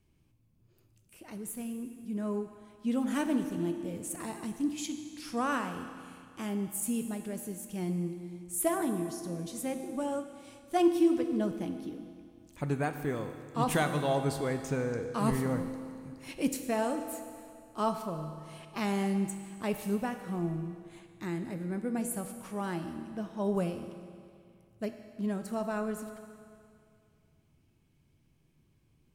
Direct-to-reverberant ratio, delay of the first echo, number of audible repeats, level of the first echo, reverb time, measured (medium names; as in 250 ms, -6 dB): 7.0 dB, no echo, no echo, no echo, 2.3 s